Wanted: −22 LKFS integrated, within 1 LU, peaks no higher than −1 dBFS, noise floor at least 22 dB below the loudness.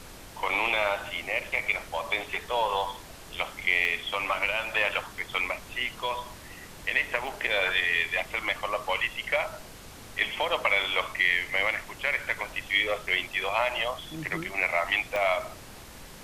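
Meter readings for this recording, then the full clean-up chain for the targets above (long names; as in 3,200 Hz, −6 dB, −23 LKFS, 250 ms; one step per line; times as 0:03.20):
number of dropouts 4; longest dropout 1.1 ms; background noise floor −46 dBFS; target noise floor −50 dBFS; integrated loudness −27.5 LKFS; sample peak −10.0 dBFS; target loudness −22.0 LKFS
→ repair the gap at 0:03.85/0:05.19/0:07.27/0:15.16, 1.1 ms
noise reduction from a noise print 6 dB
level +5.5 dB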